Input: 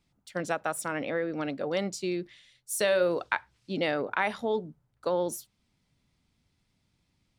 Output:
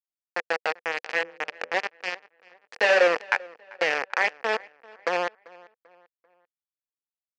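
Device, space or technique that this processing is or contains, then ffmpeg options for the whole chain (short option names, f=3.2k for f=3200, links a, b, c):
hand-held game console: -filter_complex "[0:a]acrusher=bits=3:mix=0:aa=0.000001,highpass=430,equalizer=f=490:t=q:w=4:g=10,equalizer=f=780:t=q:w=4:g=5,equalizer=f=1.8k:t=q:w=4:g=9,equalizer=f=2.5k:t=q:w=4:g=6,equalizer=f=3.7k:t=q:w=4:g=-8,lowpass=f=5.1k:w=0.5412,lowpass=f=5.1k:w=1.3066,asettb=1/sr,asplit=3[a][b][c];[a]atrim=end=1.054[d];[b]atrim=start=1.05:end=1.74,asetpts=PTS-STARTPTS,afade=t=in:d=0.004:c=qsin,afade=t=out:st=0.686:d=0.004:c=qsin,bandreject=f=84.55:t=h:w=4,bandreject=f=169.1:t=h:w=4,bandreject=f=253.65:t=h:w=4,bandreject=f=338.2:t=h:w=4,bandreject=f=422.75:t=h:w=4,bandreject=f=507.3:t=h:w=4,bandreject=f=591.85:t=h:w=4[e];[c]atrim=start=1.736[f];[d][e]acrossfade=d=0.004:c1=hsin:c2=qsin[g];[g][f]acrossfade=d=0.004:c1=qsin:c2=hsin,asplit=2[h][i];[i]adelay=391,lowpass=f=3.2k:p=1,volume=-22.5dB,asplit=2[j][k];[k]adelay=391,lowpass=f=3.2k:p=1,volume=0.41,asplit=2[l][m];[m]adelay=391,lowpass=f=3.2k:p=1,volume=0.41[n];[h][j][l][n]amix=inputs=4:normalize=0"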